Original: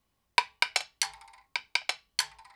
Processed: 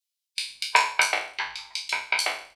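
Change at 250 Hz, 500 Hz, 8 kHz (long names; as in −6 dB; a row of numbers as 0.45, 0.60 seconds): can't be measured, +10.5 dB, +3.0 dB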